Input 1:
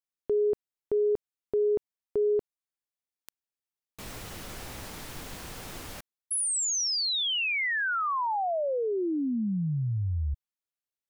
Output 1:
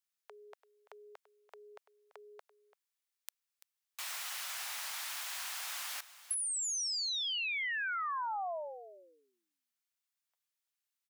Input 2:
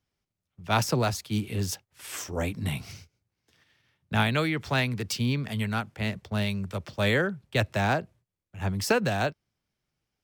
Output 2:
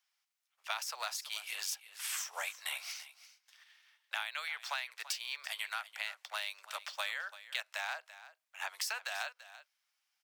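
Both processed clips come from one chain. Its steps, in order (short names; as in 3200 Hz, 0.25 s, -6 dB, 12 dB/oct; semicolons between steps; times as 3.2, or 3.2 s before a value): Bessel high-pass 1300 Hz, order 8; compressor 12:1, threshold -39 dBFS; on a send: echo 0.338 s -15.5 dB; on the sum: gain +4.5 dB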